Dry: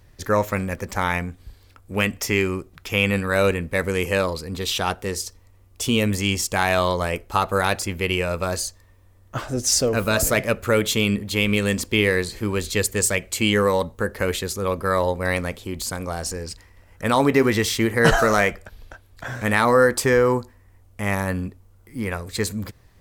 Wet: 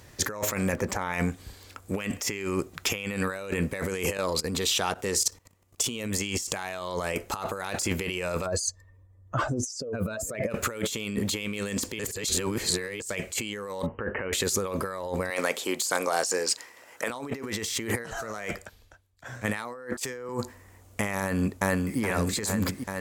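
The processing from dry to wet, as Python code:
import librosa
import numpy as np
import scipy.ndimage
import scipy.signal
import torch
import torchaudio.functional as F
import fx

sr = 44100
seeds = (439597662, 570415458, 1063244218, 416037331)

y = fx.high_shelf(x, sr, hz=2300.0, db=-9.5, at=(0.72, 1.13))
y = fx.level_steps(y, sr, step_db=17, at=(4.17, 5.84))
y = fx.spec_expand(y, sr, power=1.7, at=(8.45, 10.5), fade=0.02)
y = fx.brickwall_lowpass(y, sr, high_hz=3100.0, at=(13.86, 14.33))
y = fx.highpass(y, sr, hz=390.0, slope=12, at=(15.3, 17.1))
y = fx.band_widen(y, sr, depth_pct=100, at=(18.06, 20.29))
y = fx.echo_throw(y, sr, start_s=21.19, length_s=0.8, ms=420, feedback_pct=70, wet_db=-5.0)
y = fx.edit(y, sr, fx.reverse_span(start_s=11.99, length_s=1.01), tone=tone)
y = fx.highpass(y, sr, hz=190.0, slope=6)
y = fx.peak_eq(y, sr, hz=7100.0, db=6.0, octaves=0.59)
y = fx.over_compress(y, sr, threshold_db=-31.0, ratio=-1.0)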